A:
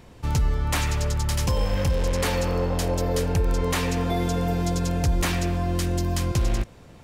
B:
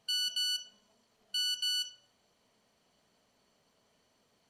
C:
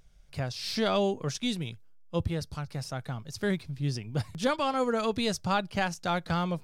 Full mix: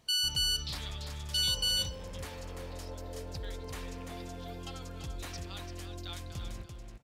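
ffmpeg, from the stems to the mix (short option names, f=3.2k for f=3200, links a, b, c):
-filter_complex "[0:a]highshelf=f=8.3k:g=7.5,volume=-19dB,asplit=2[a][b];[b]volume=-5.5dB[c];[1:a]highshelf=f=7.9k:g=12,volume=1dB[d];[2:a]bandpass=f=3.7k:t=q:w=2.7:csg=0,aeval=exprs='val(0)*pow(10,-21*if(lt(mod(1.5*n/s,1),2*abs(1.5)/1000),1-mod(1.5*n/s,1)/(2*abs(1.5)/1000),(mod(1.5*n/s,1)-2*abs(1.5)/1000)/(1-2*abs(1.5)/1000))/20)':c=same,volume=0.5dB,asplit=2[e][f];[f]volume=-8dB[g];[c][g]amix=inputs=2:normalize=0,aecho=0:1:341:1[h];[a][d][e][h]amix=inputs=4:normalize=0,highshelf=f=11k:g=-7.5"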